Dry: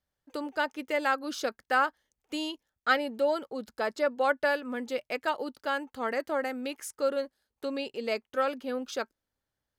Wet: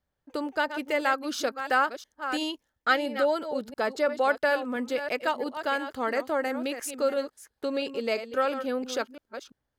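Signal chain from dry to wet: reverse delay 0.34 s, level -11 dB; in parallel at -1.5 dB: compressor, threshold -35 dBFS, peak gain reduction 15 dB; on the sum: mismatched tape noise reduction decoder only

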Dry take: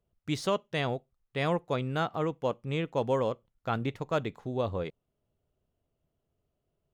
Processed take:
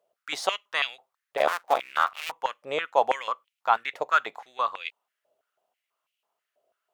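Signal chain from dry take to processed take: 1.37–2.32 cycle switcher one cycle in 2, muted; stepped high-pass 6.1 Hz 610–2600 Hz; gain +5 dB

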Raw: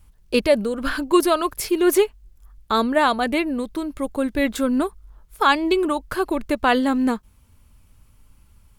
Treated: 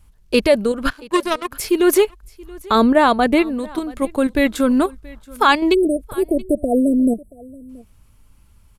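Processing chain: in parallel at +1 dB: level quantiser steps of 23 dB; 0.9–1.52 on the sum: power-law curve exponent 2; 2.75–3.42 tilt shelf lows +3.5 dB; 5.74–7.69 spectral delete 720–7700 Hz; on a send: echo 0.678 s -23 dB; on the sum: downsampling 32000 Hz

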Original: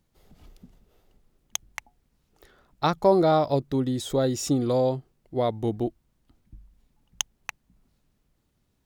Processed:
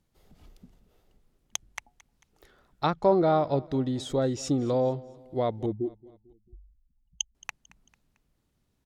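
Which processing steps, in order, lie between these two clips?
5.66–7.35 spectral contrast raised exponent 2.7; treble ducked by the level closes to 3000 Hz, closed at -19 dBFS; feedback echo 0.223 s, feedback 47%, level -22 dB; gain -2.5 dB

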